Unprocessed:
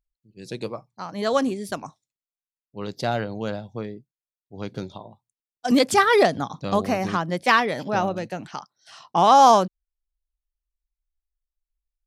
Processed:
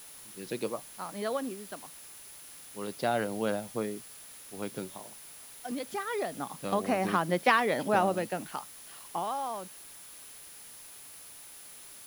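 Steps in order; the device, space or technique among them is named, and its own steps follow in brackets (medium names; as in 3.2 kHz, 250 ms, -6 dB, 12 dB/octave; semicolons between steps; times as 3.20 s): medium wave at night (band-pass 190–3700 Hz; compression, threshold -19 dBFS, peak gain reduction 9.5 dB; tremolo 0.26 Hz, depth 79%; whistle 10 kHz -50 dBFS; white noise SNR 17 dB)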